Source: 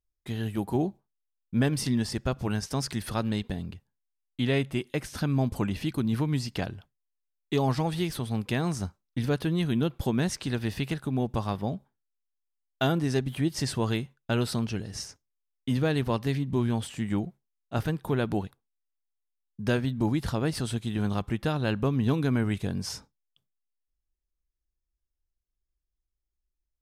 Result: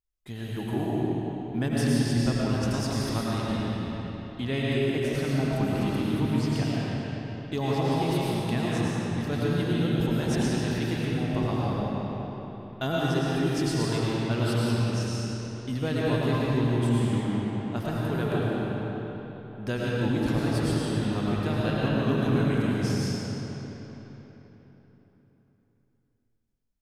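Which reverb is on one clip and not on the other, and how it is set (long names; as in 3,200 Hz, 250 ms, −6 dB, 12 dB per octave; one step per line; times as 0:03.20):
comb and all-pass reverb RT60 4 s, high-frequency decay 0.75×, pre-delay 65 ms, DRR −6.5 dB
level −5 dB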